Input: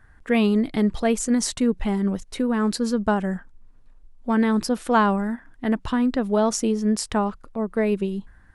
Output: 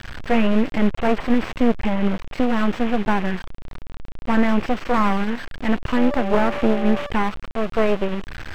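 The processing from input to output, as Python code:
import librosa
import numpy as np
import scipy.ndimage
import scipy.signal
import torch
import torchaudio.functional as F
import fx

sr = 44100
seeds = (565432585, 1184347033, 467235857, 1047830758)

y = fx.delta_mod(x, sr, bps=16000, step_db=-30.0)
y = fx.dmg_tone(y, sr, hz=580.0, level_db=-30.0, at=(5.96, 7.09), fade=0.02)
y = np.maximum(y, 0.0)
y = y * 10.0 ** (8.0 / 20.0)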